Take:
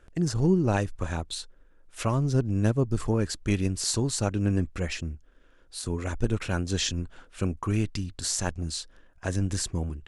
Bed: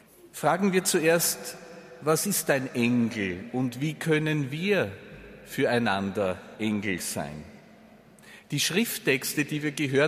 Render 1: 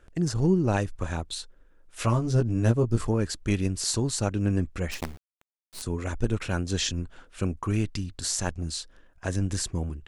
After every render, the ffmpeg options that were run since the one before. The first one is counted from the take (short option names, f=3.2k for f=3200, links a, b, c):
-filter_complex "[0:a]asettb=1/sr,asplit=3[a][b][c];[a]atrim=end=2.004[d];[b]atrim=start=2:end=3.05,asetpts=PTS-STARTPTS,afade=t=in:d=0.004:c=qsin,afade=t=out:st=1.046:d=0.004:c=qsin,asplit=2[e][f];[f]adelay=17,volume=-4dB[g];[e][g]amix=inputs=2:normalize=0,atrim=end_sample=46305[h];[c]atrim=start=3.046[i];[d][h]acrossfade=d=0.004:c1=hsin:c2=qsin[j];[j][i]acrossfade=d=0.004:c1=qsin:c2=hsin,asettb=1/sr,asplit=3[k][l][m];[k]atrim=end=4.914[n];[l]atrim=start=4.91:end=5.82,asetpts=PTS-STARTPTS,afade=t=in:d=0.004:c=qsin,afade=t=out:st=0.906:d=0.004:c=qsin,acrusher=bits=5:dc=4:mix=0:aa=0.000001[o];[m]atrim=start=5.816[p];[n][o]acrossfade=d=0.004:c1=hsin:c2=qsin[q];[q][p]acrossfade=d=0.004:c1=qsin:c2=hsin"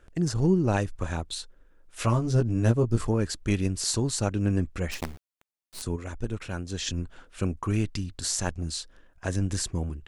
-filter_complex "[0:a]asplit=3[a][b][c];[a]atrim=end=5.962[d];[b]atrim=start=5.958:end=6.872,asetpts=PTS-STARTPTS,volume=-5.5dB[e];[c]atrim=start=6.868[f];[d][e]acrossfade=d=0.004:c1=hsin:c2=hsin[g];[g][f]acrossfade=d=0.004:c1=hsin:c2=hsin"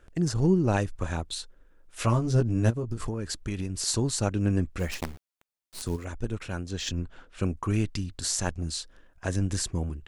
-filter_complex "[0:a]asplit=3[a][b][c];[a]afade=t=out:st=2.69:d=0.02[d];[b]acompressor=threshold=-26dB:ratio=12:attack=3.2:release=140:knee=1:detection=peak,afade=t=in:st=2.69:d=0.02,afade=t=out:st=3.86:d=0.02[e];[c]afade=t=in:st=3.86:d=0.02[f];[d][e][f]amix=inputs=3:normalize=0,asettb=1/sr,asplit=3[g][h][i];[g]atrim=end=4.794[j];[h]atrim=start=4.79:end=6.05,asetpts=PTS-STARTPTS,afade=t=in:d=0.004:c=qsin,afade=t=out:st=1.256:d=0.004:c=qsin,acrusher=bits=6:mode=log:mix=0:aa=0.000001[k];[i]atrim=start=6.046[l];[j][k]acrossfade=d=0.004:c1=hsin:c2=qsin[m];[m][l]acrossfade=d=0.004:c1=qsin:c2=hsin,asettb=1/sr,asplit=3[n][o][p];[n]atrim=end=6.694[q];[o]atrim=start=6.69:end=7.41,asetpts=PTS-STARTPTS,afade=t=in:d=0.004:c=qsin,afade=t=out:st=0.716:d=0.004:c=qsin,adynamicsmooth=sensitivity=3.5:basefreq=7.7k[r];[p]atrim=start=7.406[s];[q][r]acrossfade=d=0.004:c1=hsin:c2=qsin[t];[t][s]acrossfade=d=0.004:c1=qsin:c2=hsin"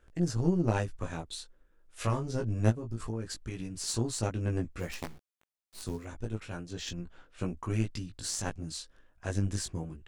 -af "flanger=delay=17:depth=2.5:speed=0.27,aeval=exprs='0.282*(cos(1*acos(clip(val(0)/0.282,-1,1)))-cos(1*PI/2))+0.0282*(cos(3*acos(clip(val(0)/0.282,-1,1)))-cos(3*PI/2))+0.0178*(cos(4*acos(clip(val(0)/0.282,-1,1)))-cos(4*PI/2))':c=same"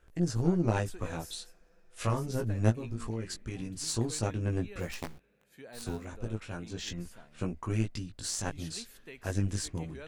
-filter_complex "[1:a]volume=-24.5dB[a];[0:a][a]amix=inputs=2:normalize=0"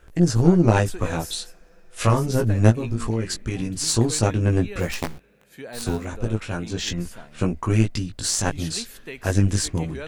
-af "volume=11.5dB,alimiter=limit=-1dB:level=0:latency=1"